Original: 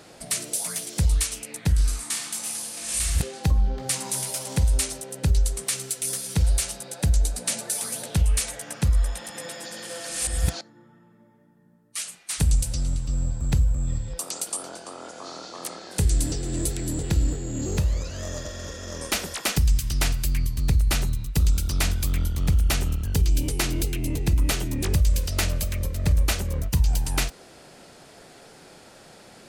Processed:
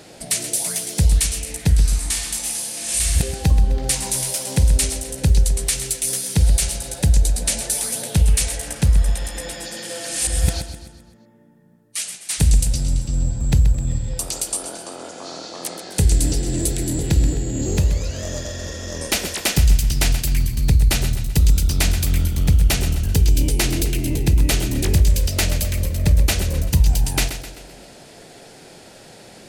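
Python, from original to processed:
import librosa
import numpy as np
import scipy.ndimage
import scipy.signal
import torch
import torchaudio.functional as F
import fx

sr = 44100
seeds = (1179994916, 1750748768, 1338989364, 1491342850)

p1 = fx.peak_eq(x, sr, hz=1200.0, db=-6.5, octaves=0.68)
p2 = p1 + fx.echo_feedback(p1, sr, ms=129, feedback_pct=47, wet_db=-10.5, dry=0)
y = p2 * 10.0 ** (5.5 / 20.0)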